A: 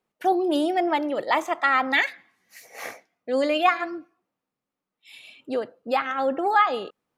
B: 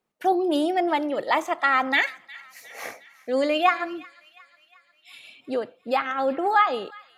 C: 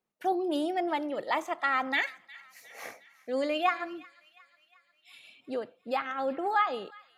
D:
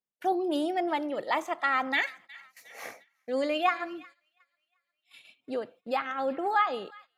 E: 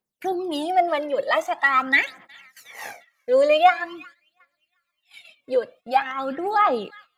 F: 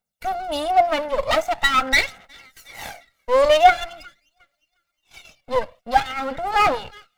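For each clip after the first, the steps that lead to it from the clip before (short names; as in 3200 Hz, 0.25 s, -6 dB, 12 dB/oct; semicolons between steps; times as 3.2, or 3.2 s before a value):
thin delay 0.358 s, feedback 57%, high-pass 1700 Hz, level -19 dB
bell 190 Hz +2.5 dB 0.33 oct; gain -7 dB
gate -53 dBFS, range -15 dB; gain +1 dB
phaser 0.45 Hz, delay 2 ms, feedback 67%; gain +4 dB
minimum comb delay 1.4 ms; gain +3 dB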